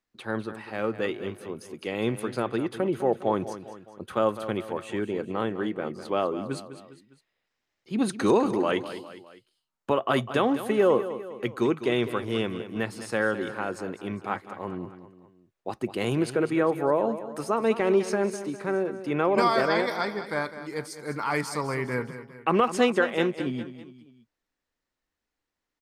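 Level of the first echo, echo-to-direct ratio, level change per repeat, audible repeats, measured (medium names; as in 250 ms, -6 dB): -12.5 dB, -11.5 dB, -6.0 dB, 3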